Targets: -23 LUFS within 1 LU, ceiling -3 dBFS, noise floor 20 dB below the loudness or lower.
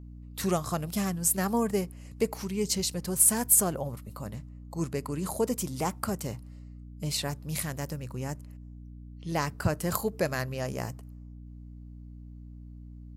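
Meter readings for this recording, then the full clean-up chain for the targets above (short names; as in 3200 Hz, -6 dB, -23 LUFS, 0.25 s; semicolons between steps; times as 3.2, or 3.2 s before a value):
hum 60 Hz; harmonics up to 300 Hz; hum level -43 dBFS; loudness -29.0 LUFS; peak -7.0 dBFS; loudness target -23.0 LUFS
-> de-hum 60 Hz, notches 5; gain +6 dB; limiter -3 dBFS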